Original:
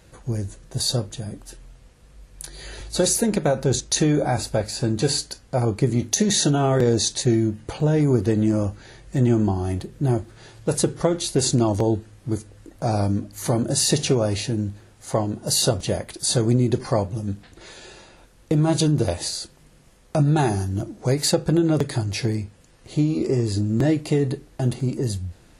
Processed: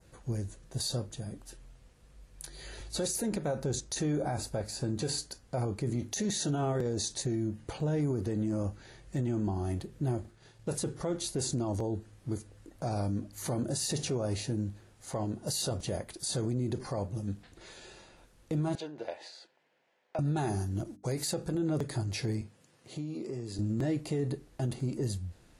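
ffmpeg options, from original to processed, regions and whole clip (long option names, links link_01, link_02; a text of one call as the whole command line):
ffmpeg -i in.wav -filter_complex "[0:a]asettb=1/sr,asplit=3[link_01][link_02][link_03];[link_01]atrim=end=10.204[link_04];[link_02]atrim=start=10.2:end=10.73,asetpts=PTS-STARTPTS,afade=type=in:duration=0.004:curve=qsin,afade=type=out:start_time=0.526:duration=0.004:curve=qsin,agate=range=-33dB:threshold=-40dB:ratio=3:release=100:detection=peak,asplit=2[link_05][link_06];[link_06]adelay=46,volume=-6dB[link_07];[link_05][link_07]amix=inputs=2:normalize=0,atrim=end_sample=23373[link_08];[link_03]atrim=start=10.726[link_09];[link_04][link_08]acrossfade=duration=0.004:curve1=hsin:curve2=qsin[link_10];[link_10][link_09]acrossfade=duration=0.004:curve1=qsin:curve2=hsin,asettb=1/sr,asplit=3[link_11][link_12][link_13];[link_11]atrim=end=18.754[link_14];[link_12]atrim=start=18.75:end=20.19,asetpts=PTS-STARTPTS,afade=type=in:duration=0.004:curve=qsin,afade=type=out:start_time=1.436:duration=0.004:curve=qsin,highpass=650,lowpass=2400,equalizer=frequency=1200:width=4.8:gain=-11[link_15];[link_13]atrim=start=20.186[link_16];[link_14][link_15]acrossfade=duration=0.004:curve1=hsin:curve2=qsin[link_17];[link_17][link_16]acrossfade=duration=0.004:curve1=qsin:curve2=hsin,asettb=1/sr,asplit=3[link_18][link_19][link_20];[link_18]atrim=end=20.844[link_21];[link_19]atrim=start=20.84:end=21.55,asetpts=PTS-STARTPTS,afade=type=in:duration=0.004:curve=qsin,afade=type=out:start_time=0.706:duration=0.004:curve=qsin,agate=range=-35dB:threshold=-41dB:ratio=16:release=100:detection=peak,highshelf=frequency=7700:gain=7,bandreject=frequency=50:width_type=h:width=6,bandreject=frequency=100:width_type=h:width=6,bandreject=frequency=150:width_type=h:width=6,bandreject=frequency=200:width_type=h:width=6,bandreject=frequency=250:width_type=h:width=6,bandreject=frequency=300:width_type=h:width=6[link_22];[link_20]atrim=start=21.546[link_23];[link_21][link_22]acrossfade=duration=0.004:curve1=hsin:curve2=qsin[link_24];[link_24][link_23]acrossfade=duration=0.004:curve1=qsin:curve2=hsin,asettb=1/sr,asplit=3[link_25][link_26][link_27];[link_25]atrim=end=22.414[link_28];[link_26]atrim=start=22.41:end=23.59,asetpts=PTS-STARTPTS,afade=type=in:duration=0.004:curve=qsin,afade=type=out:start_time=1.176:duration=0.004:curve=qsin,highpass=frequency=110:width=0.5412,highpass=frequency=110:width=1.3066,acompressor=threshold=-30dB:ratio=2.5:attack=3.2:release=140:knee=1:detection=peak[link_29];[link_27]atrim=start=23.586[link_30];[link_28][link_29]acrossfade=duration=0.004:curve1=hsin:curve2=qsin[link_31];[link_31][link_30]acrossfade=duration=0.004:curve1=qsin:curve2=hsin,adynamicequalizer=threshold=0.00794:dfrequency=2900:dqfactor=0.95:tfrequency=2900:tqfactor=0.95:attack=5:release=100:ratio=0.375:range=2.5:mode=cutabove:tftype=bell,alimiter=limit=-16dB:level=0:latency=1:release=33,volume=-8dB" out.wav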